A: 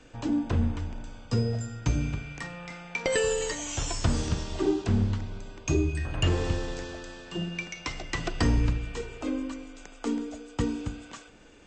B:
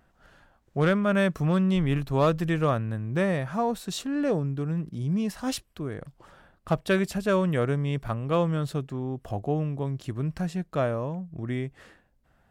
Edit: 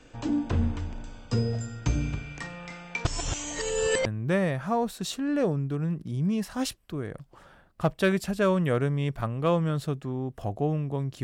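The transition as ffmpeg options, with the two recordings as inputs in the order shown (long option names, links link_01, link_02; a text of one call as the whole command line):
ffmpeg -i cue0.wav -i cue1.wav -filter_complex "[0:a]apad=whole_dur=11.23,atrim=end=11.23,asplit=2[link_01][link_02];[link_01]atrim=end=3.052[link_03];[link_02]atrim=start=3.048:end=4.062,asetpts=PTS-STARTPTS,areverse[link_04];[1:a]atrim=start=2.928:end=10.1[link_05];[link_03][link_04]acrossfade=duration=0.004:curve1=hsin:curve2=hsin[link_06];[link_06][link_05]acrossfade=duration=0.004:curve1=hsin:curve2=hsin" out.wav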